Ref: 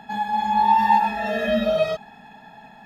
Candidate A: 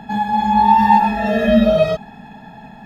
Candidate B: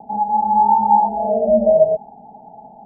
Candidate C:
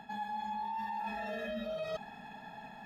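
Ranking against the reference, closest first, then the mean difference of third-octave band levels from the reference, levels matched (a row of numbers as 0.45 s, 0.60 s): A, C, B; 3.0 dB, 6.0 dB, 9.0 dB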